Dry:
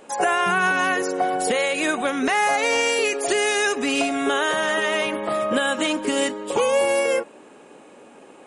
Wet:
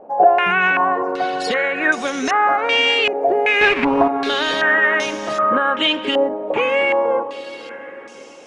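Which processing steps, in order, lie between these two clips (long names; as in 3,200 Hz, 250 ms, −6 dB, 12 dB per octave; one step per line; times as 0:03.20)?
0:03.61–0:04.08: each half-wave held at its own peak
feedback delay with all-pass diffusion 599 ms, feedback 47%, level −13.5 dB
low-pass on a step sequencer 2.6 Hz 710–5,800 Hz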